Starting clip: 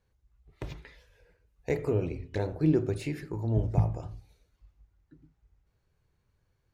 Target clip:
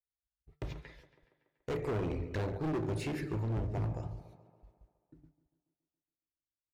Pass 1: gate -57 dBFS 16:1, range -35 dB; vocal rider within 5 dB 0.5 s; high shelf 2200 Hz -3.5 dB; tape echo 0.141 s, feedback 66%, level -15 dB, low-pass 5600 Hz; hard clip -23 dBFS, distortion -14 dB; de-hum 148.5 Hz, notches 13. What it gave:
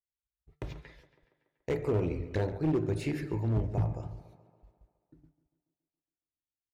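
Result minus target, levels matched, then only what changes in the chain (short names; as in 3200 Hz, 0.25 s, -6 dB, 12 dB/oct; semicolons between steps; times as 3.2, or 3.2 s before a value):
hard clip: distortion -8 dB
change: hard clip -31 dBFS, distortion -6 dB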